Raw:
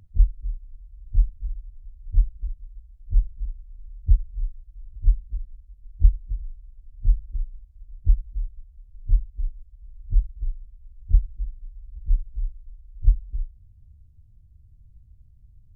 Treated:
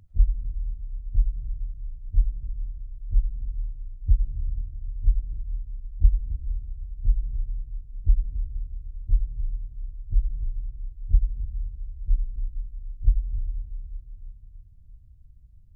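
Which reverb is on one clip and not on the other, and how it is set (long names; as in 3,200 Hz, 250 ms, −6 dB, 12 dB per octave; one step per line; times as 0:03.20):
comb and all-pass reverb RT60 3.3 s, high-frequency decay 0.7×, pre-delay 65 ms, DRR 5 dB
level −2 dB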